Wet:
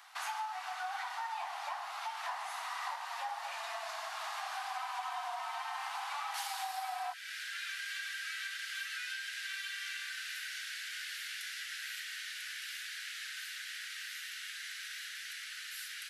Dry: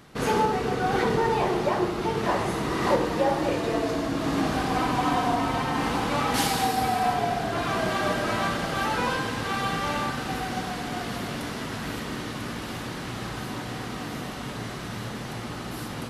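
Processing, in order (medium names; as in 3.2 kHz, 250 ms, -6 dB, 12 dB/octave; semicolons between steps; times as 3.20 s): steep high-pass 720 Hz 72 dB/octave, from 7.12 s 1.5 kHz; compression 4:1, threshold -37 dBFS, peak gain reduction 13 dB; trim -1.5 dB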